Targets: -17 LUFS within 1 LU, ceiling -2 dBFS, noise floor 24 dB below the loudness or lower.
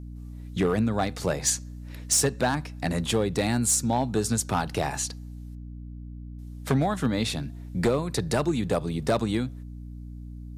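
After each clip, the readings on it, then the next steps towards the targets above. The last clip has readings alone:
clipped 0.5%; flat tops at -16.0 dBFS; hum 60 Hz; harmonics up to 300 Hz; hum level -36 dBFS; loudness -26.5 LUFS; peak -16.0 dBFS; loudness target -17.0 LUFS
-> clip repair -16 dBFS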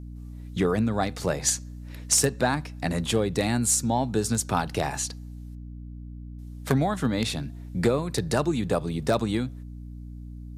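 clipped 0.0%; hum 60 Hz; harmonics up to 300 Hz; hum level -36 dBFS
-> de-hum 60 Hz, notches 5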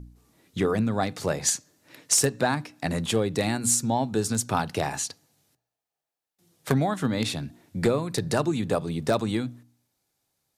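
hum none; loudness -26.0 LUFS; peak -7.5 dBFS; loudness target -17.0 LUFS
-> gain +9 dB; limiter -2 dBFS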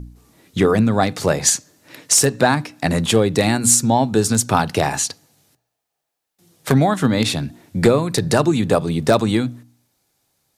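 loudness -17.5 LUFS; peak -2.0 dBFS; noise floor -79 dBFS

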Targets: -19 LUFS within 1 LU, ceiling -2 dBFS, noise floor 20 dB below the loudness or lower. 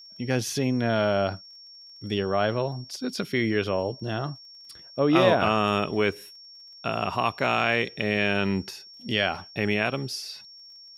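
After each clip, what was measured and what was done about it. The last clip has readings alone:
ticks 27/s; steady tone 5500 Hz; tone level -45 dBFS; loudness -26.0 LUFS; peak -6.5 dBFS; loudness target -19.0 LUFS
-> de-click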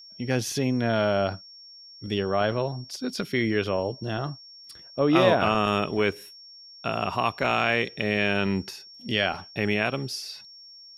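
ticks 0/s; steady tone 5500 Hz; tone level -45 dBFS
-> notch 5500 Hz, Q 30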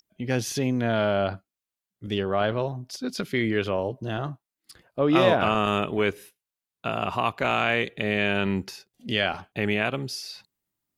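steady tone none; loudness -26.0 LUFS; peak -6.5 dBFS; loudness target -19.0 LUFS
-> gain +7 dB; limiter -2 dBFS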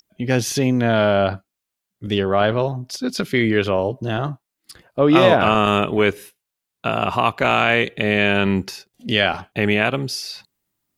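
loudness -19.0 LUFS; peak -2.0 dBFS; noise floor -83 dBFS

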